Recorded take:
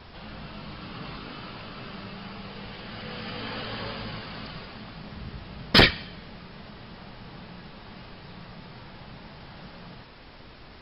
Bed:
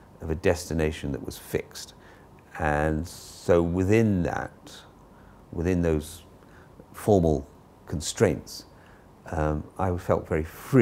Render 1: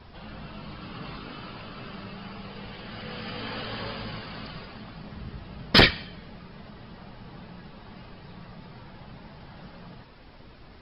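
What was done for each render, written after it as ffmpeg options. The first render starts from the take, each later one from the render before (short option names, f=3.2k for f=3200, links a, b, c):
-af "afftdn=nr=6:nf=-47"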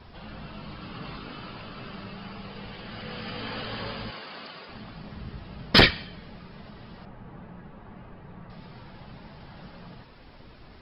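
-filter_complex "[0:a]asettb=1/sr,asplit=3[a][b][c];[a]atrim=end=4.104[d];[b]atrim=start=4.1:end=4.69,asetpts=PTS-STARTPTS,afade=t=in:d=0.004:c=qsin,afade=t=out:st=0.586:d=0.004:c=qsin,highpass=330[e];[c]atrim=start=4.686[f];[d][e]acrossfade=d=0.004:c1=hsin:c2=qsin[g];[g][f]acrossfade=d=0.004:c1=qsin:c2=hsin,asettb=1/sr,asplit=3[h][i][j];[h]atrim=end=7.054[k];[i]atrim=start=7.05:end=8.5,asetpts=PTS-STARTPTS,afade=t=in:d=0.004:c=qsin,afade=t=out:st=1.446:d=0.004:c=qsin,lowpass=1.8k[l];[j]atrim=start=8.496[m];[k][l]acrossfade=d=0.004:c1=hsin:c2=qsin[n];[n][m]acrossfade=d=0.004:c1=qsin:c2=hsin"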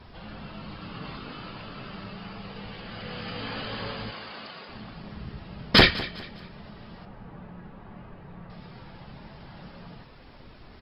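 -filter_complex "[0:a]asplit=2[a][b];[b]adelay=29,volume=-13dB[c];[a][c]amix=inputs=2:normalize=0,aecho=1:1:203|406|609:0.141|0.0494|0.0173"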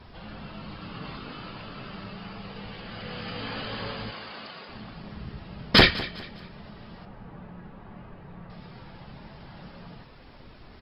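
-af anull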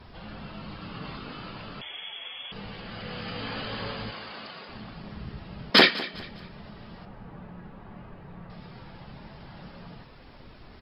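-filter_complex "[0:a]asettb=1/sr,asplit=3[a][b][c];[a]atrim=end=1.814[d];[b]atrim=start=1.81:end=2.52,asetpts=PTS-STARTPTS,afade=t=in:d=0.004:c=qsin,afade=t=out:st=0.706:d=0.004:c=qsin,lowpass=f=3k:t=q:w=0.5098,lowpass=f=3k:t=q:w=0.6013,lowpass=f=3k:t=q:w=0.9,lowpass=f=3k:t=q:w=2.563,afreqshift=-3500[e];[c]atrim=start=2.516[f];[d][e]acrossfade=d=0.004:c1=hsin:c2=qsin[g];[g][f]acrossfade=d=0.004:c1=qsin:c2=hsin,asettb=1/sr,asplit=3[h][i][j];[h]atrim=end=5.704[k];[i]atrim=start=5.7:end=6.14,asetpts=PTS-STARTPTS,afade=t=in:d=0.004:c=qsin,afade=t=out:st=0.436:d=0.004:c=qsin,highpass=f=210:w=0.5412,highpass=f=210:w=1.3066[l];[j]atrim=start=6.136[m];[k][l]acrossfade=d=0.004:c1=hsin:c2=qsin[n];[n][m]acrossfade=d=0.004:c1=qsin:c2=hsin"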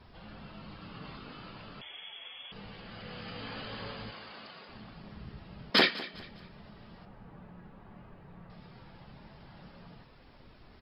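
-af "volume=-7dB"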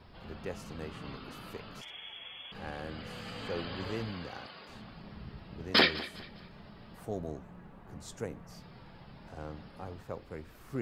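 -filter_complex "[1:a]volume=-17.5dB[a];[0:a][a]amix=inputs=2:normalize=0"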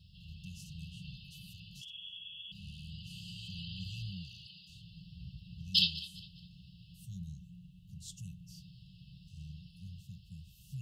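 -af "highpass=46,afftfilt=real='re*(1-between(b*sr/4096,200,2600))':imag='im*(1-between(b*sr/4096,200,2600))':win_size=4096:overlap=0.75"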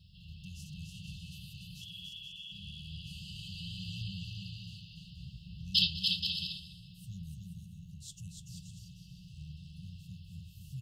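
-af "aecho=1:1:290|478.5|601|680.7|732.4:0.631|0.398|0.251|0.158|0.1"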